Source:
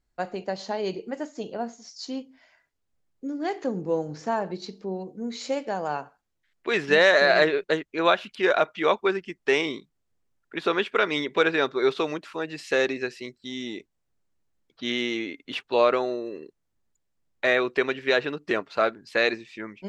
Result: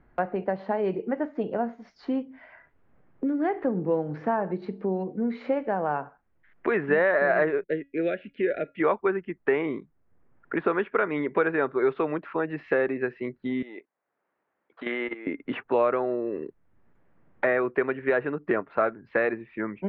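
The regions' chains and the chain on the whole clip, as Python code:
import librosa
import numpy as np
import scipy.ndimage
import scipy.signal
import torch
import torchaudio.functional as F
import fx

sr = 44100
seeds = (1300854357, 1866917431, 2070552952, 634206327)

y = fx.chain(x, sr, fx.cheby1_bandstop(low_hz=480.0, high_hz=2100.0, order=2),
    fx.comb_fb(f0_hz=280.0, decay_s=0.22, harmonics='all', damping=0.0, mix_pct=40), at=(7.64, 8.8))
y = fx.chain(y, sr, fx.highpass(hz=530.0, slope=12),
    fx.level_steps(step_db=16), at=(13.62, 15.27))
y = scipy.signal.sosfilt(scipy.signal.butter(4, 1900.0, 'lowpass', fs=sr, output='sos'), y)
y = fx.low_shelf(y, sr, hz=180.0, db=3.5)
y = fx.band_squash(y, sr, depth_pct=70)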